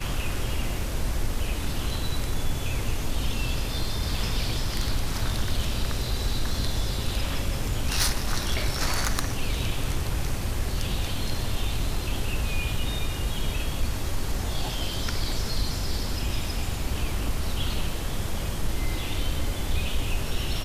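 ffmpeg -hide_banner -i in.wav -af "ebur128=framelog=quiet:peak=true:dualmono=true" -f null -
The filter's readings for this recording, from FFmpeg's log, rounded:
Integrated loudness:
  I:         -26.6 LUFS
  Threshold: -36.6 LUFS
Loudness range:
  LRA:         2.6 LU
  Threshold: -46.5 LUFS
  LRA low:   -27.5 LUFS
  LRA high:  -24.9 LUFS
True peak:
  Peak:      -10.4 dBFS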